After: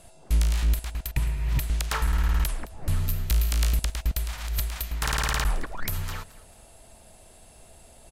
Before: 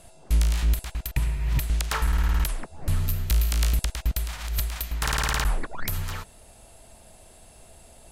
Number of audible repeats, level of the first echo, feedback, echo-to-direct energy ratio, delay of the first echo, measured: 2, -20.5 dB, 35%, -20.0 dB, 0.216 s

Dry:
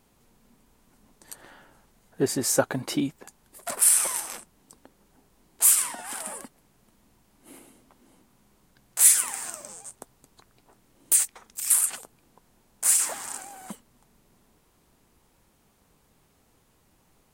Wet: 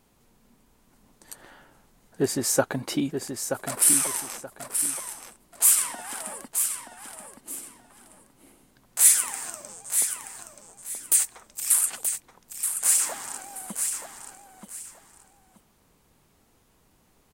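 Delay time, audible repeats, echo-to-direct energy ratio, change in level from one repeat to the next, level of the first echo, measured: 0.928 s, 2, -6.5 dB, -11.5 dB, -7.0 dB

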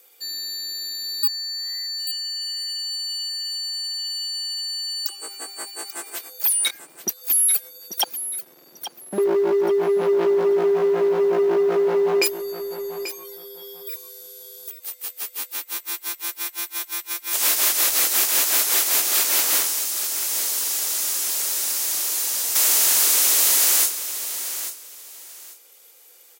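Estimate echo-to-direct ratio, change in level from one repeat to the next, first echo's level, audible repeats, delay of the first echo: -11.0 dB, -13.0 dB, -11.0 dB, 2, 0.838 s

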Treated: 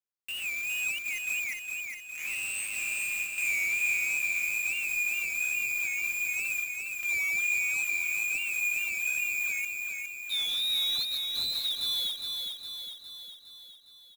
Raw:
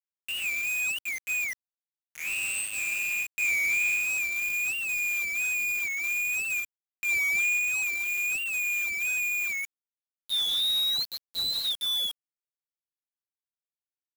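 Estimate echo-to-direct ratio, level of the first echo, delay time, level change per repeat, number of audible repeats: -3.0 dB, -4.5 dB, 0.41 s, -5.0 dB, 7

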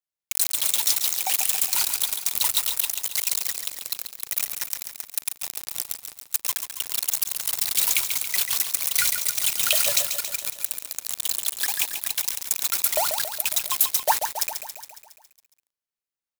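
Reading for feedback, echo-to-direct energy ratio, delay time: 60%, -6.0 dB, 0.138 s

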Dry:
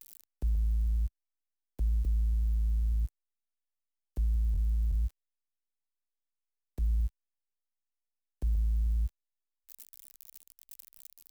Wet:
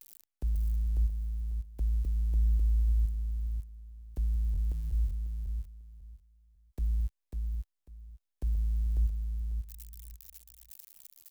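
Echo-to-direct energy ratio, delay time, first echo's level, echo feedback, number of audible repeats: -4.5 dB, 0.546 s, -4.5 dB, 19%, 3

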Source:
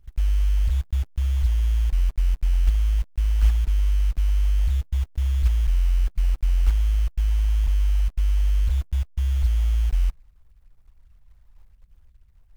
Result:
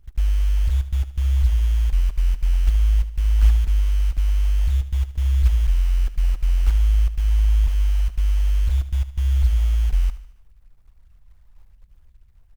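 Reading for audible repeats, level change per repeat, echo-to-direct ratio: 4, -6.0 dB, -13.0 dB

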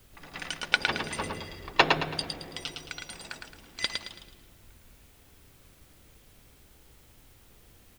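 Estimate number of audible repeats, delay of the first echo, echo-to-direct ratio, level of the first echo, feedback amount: 4, 0.11 s, -4.0 dB, -4.5 dB, 36%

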